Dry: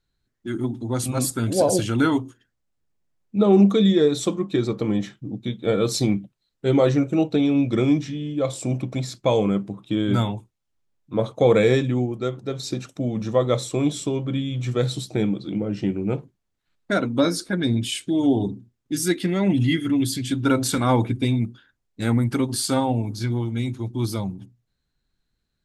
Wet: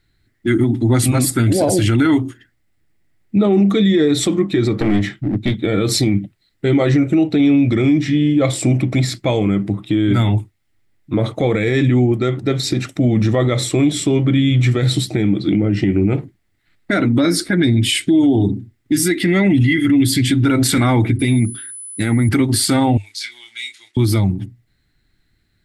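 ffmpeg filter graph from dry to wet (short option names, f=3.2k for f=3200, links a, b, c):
-filter_complex "[0:a]asettb=1/sr,asplit=3[a][b][c];[a]atrim=end=4.784[d];[b]atrim=start=4.78:end=5.58,asetpts=PTS-STARTPTS,afade=t=in:d=0.004:c=qsin,afade=t=out:st=0.796:d=0.004:c=qsin,aeval=exprs='clip(val(0),-1,0.0316)':c=same,highshelf=f=9.6k:g=-4.5[e];[c]atrim=start=5.576[f];[d][e]acrossfade=d=0.004:c1=hsin:c2=qsin[g];[g][f]acrossfade=d=0.004:c1=qsin:c2=hsin,asettb=1/sr,asplit=3[h][i][j];[h]atrim=end=21.194[k];[i]atrim=start=21.19:end=22.29,asetpts=PTS-STARTPTS,afade=t=in:d=0.004:c=qsin,afade=t=out:st=1.096:d=0.004:c=qsin,highpass=110,aeval=exprs='val(0)+0.00891*sin(2*PI*10000*n/s)':c=same[l];[j]atrim=start=22.286[m];[k][l]acrossfade=d=0.004:c1=hsin:c2=qsin[n];[n][m]acrossfade=d=0.004:c1=qsin:c2=hsin,asettb=1/sr,asplit=3[o][p][q];[o]atrim=end=22.974[r];[p]atrim=start=22.97:end=23.97,asetpts=PTS-STARTPTS,afade=t=in:d=0.004:c=qsin,afade=t=out:st=0.996:d=0.004:c=qsin,aeval=exprs='sgn(val(0))*max(abs(val(0))-0.0015,0)':c=same,asuperpass=centerf=5300:order=4:qfactor=0.8,asplit=2[s][t];[t]adelay=28,volume=-7dB[u];[s][u]amix=inputs=2:normalize=0,atrim=end_sample=44100[v];[q]atrim=start=23.966[w];[r][v]acrossfade=d=0.004:c1=hsin:c2=qsin[x];[x][w]acrossfade=d=0.004:c1=qsin:c2=hsin,equalizer=f=100:t=o:w=0.33:g=9,equalizer=f=315:t=o:w=0.33:g=6,equalizer=f=500:t=o:w=0.33:g=-6,equalizer=f=1k:t=o:w=0.33:g=-6,equalizer=f=2k:t=o:w=0.33:g=11,equalizer=f=6.3k:t=o:w=0.33:g=-6,acompressor=threshold=-19dB:ratio=2.5,alimiter=level_in=17.5dB:limit=-1dB:release=50:level=0:latency=1,volume=-6dB"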